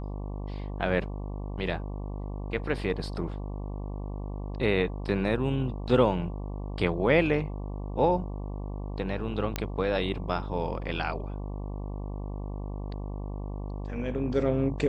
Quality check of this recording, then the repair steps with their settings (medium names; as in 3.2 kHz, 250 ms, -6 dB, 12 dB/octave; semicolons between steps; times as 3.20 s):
buzz 50 Hz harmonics 23 -35 dBFS
9.56 s: pop -13 dBFS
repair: de-click; de-hum 50 Hz, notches 23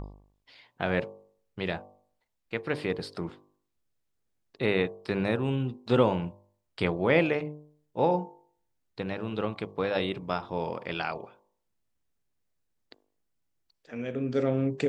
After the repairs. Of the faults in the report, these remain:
nothing left